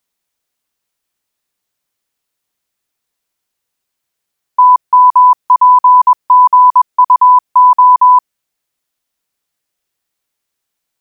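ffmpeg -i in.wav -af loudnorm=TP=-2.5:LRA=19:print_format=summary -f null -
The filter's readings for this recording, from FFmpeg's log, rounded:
Input Integrated:     -7.6 LUFS
Input True Peak:      -1.7 dBTP
Input LRA:            13.5 LU
Input Threshold:     -17.7 LUFS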